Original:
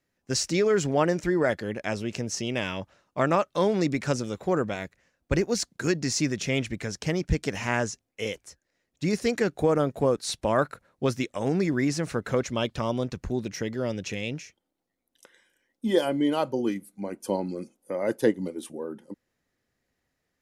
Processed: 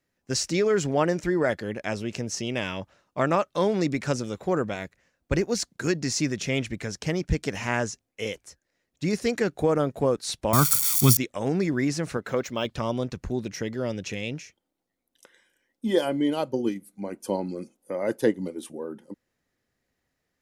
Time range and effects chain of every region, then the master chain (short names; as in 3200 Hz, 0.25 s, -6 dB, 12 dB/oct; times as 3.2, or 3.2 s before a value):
10.53–11.17 switching spikes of -22.5 dBFS + tone controls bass +9 dB, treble +11 dB + comb 0.9 ms, depth 73%
12.17–12.66 low shelf 120 Hz -12 dB + decimation joined by straight lines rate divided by 2×
16.29–16.86 transient shaper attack +4 dB, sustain -3 dB + dynamic EQ 1200 Hz, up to -5 dB, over -38 dBFS, Q 0.84
whole clip: dry